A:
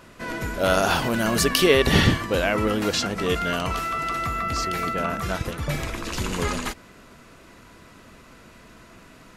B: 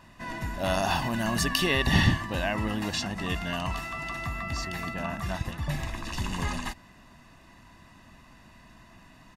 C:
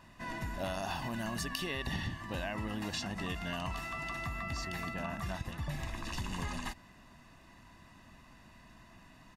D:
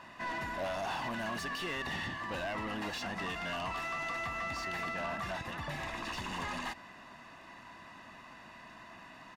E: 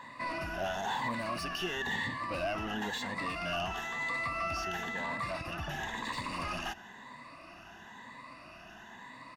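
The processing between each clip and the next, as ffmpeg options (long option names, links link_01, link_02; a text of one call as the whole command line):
ffmpeg -i in.wav -af "highshelf=frequency=7200:gain=-4.5,aecho=1:1:1.1:0.7,volume=-6.5dB" out.wav
ffmpeg -i in.wav -af "acompressor=threshold=-29dB:ratio=12,volume=-4dB" out.wav
ffmpeg -i in.wav -filter_complex "[0:a]asplit=2[link_01][link_02];[link_02]highpass=frequency=720:poles=1,volume=25dB,asoftclip=type=tanh:threshold=-19.5dB[link_03];[link_01][link_03]amix=inputs=2:normalize=0,lowpass=frequency=2100:poles=1,volume=-6dB,volume=-7.5dB" out.wav
ffmpeg -i in.wav -af "afftfilt=real='re*pow(10,12/40*sin(2*PI*(1*log(max(b,1)*sr/1024/100)/log(2)-(0.99)*(pts-256)/sr)))':imag='im*pow(10,12/40*sin(2*PI*(1*log(max(b,1)*sr/1024/100)/log(2)-(0.99)*(pts-256)/sr)))':win_size=1024:overlap=0.75" out.wav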